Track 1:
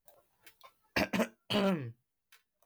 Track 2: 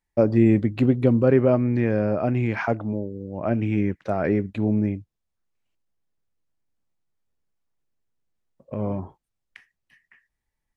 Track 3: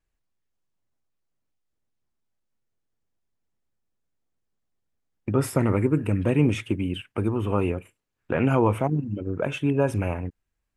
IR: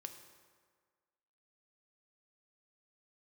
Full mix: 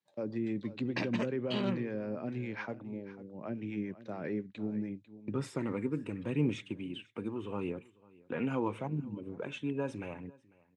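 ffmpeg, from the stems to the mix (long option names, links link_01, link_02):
-filter_complex "[0:a]lowpass=frequency=2900:poles=1,volume=-3dB[link_01];[1:a]acrossover=split=490[link_02][link_03];[link_02]aeval=exprs='val(0)*(1-0.5/2+0.5/2*cos(2*PI*7.1*n/s))':channel_layout=same[link_04];[link_03]aeval=exprs='val(0)*(1-0.5/2-0.5/2*cos(2*PI*7.1*n/s))':channel_layout=same[link_05];[link_04][link_05]amix=inputs=2:normalize=0,alimiter=limit=-14dB:level=0:latency=1:release=120,volume=-10.5dB,asplit=2[link_06][link_07];[link_07]volume=-16dB[link_08];[2:a]aphaser=in_gain=1:out_gain=1:delay=4.3:decay=0.3:speed=0.77:type=sinusoidal,volume=-11.5dB,asplit=3[link_09][link_10][link_11];[link_10]volume=-24dB[link_12];[link_11]apad=whole_len=474661[link_13];[link_06][link_13]sidechaincompress=threshold=-50dB:ratio=3:attack=16:release=390[link_14];[link_08][link_12]amix=inputs=2:normalize=0,aecho=0:1:497:1[link_15];[link_01][link_14][link_09][link_15]amix=inputs=4:normalize=0,highpass=frequency=130:width=0.5412,highpass=frequency=130:width=1.3066,equalizer=frequency=680:width_type=q:width=4:gain=-7,equalizer=frequency=1300:width_type=q:width=4:gain=-3,equalizer=frequency=3800:width_type=q:width=4:gain=7,lowpass=frequency=7900:width=0.5412,lowpass=frequency=7900:width=1.3066"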